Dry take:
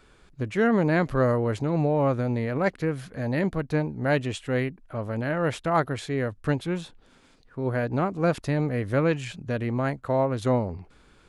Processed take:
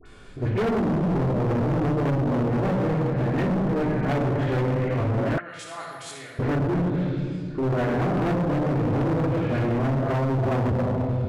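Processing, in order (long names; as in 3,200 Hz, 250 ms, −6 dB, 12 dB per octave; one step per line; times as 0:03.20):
spectrum averaged block by block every 50 ms
0:03.60–0:04.35: mains-hum notches 50/100/150/200/250/300 Hz
rectangular room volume 2,700 cubic metres, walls mixed, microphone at 3.3 metres
in parallel at −1.5 dB: downward compressor, threshold −24 dBFS, peak gain reduction 13 dB
0:05.37–0:06.39: on the sum: first-order pre-emphasis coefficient 0.97
treble cut that deepens with the level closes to 340 Hz, closed at −10.5 dBFS
all-pass dispersion highs, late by 58 ms, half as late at 1,300 Hz
hard clipping −21 dBFS, distortion −7 dB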